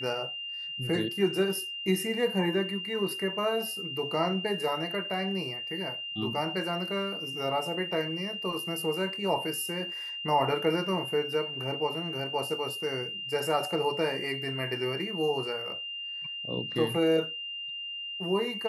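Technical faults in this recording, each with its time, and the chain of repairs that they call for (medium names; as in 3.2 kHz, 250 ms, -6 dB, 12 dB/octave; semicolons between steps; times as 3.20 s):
whine 2.8 kHz -35 dBFS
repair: band-stop 2.8 kHz, Q 30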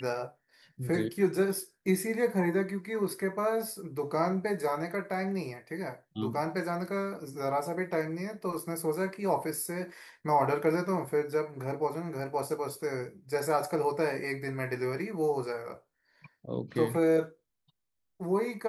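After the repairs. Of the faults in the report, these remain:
nothing left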